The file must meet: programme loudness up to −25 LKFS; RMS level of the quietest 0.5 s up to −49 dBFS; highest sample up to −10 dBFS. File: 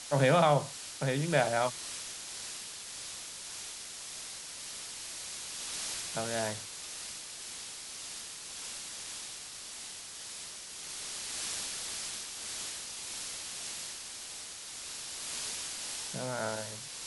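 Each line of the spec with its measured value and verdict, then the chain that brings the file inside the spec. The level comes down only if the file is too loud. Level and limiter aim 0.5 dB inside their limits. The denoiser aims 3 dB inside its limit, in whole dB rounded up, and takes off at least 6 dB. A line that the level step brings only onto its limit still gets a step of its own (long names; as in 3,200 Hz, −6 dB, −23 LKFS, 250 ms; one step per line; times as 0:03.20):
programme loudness −35.5 LKFS: in spec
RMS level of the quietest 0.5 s −45 dBFS: out of spec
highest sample −13.5 dBFS: in spec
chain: broadband denoise 7 dB, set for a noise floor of −45 dBFS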